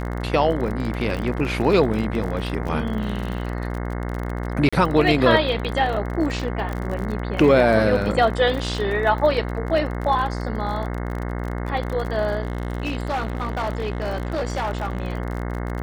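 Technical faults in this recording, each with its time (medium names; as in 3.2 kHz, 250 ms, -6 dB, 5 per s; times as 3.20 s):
buzz 60 Hz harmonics 36 -27 dBFS
crackle 38 per s -28 dBFS
2.68 s: dropout 4.3 ms
4.69–4.72 s: dropout 35 ms
6.73 s: pop
12.42–15.13 s: clipped -20.5 dBFS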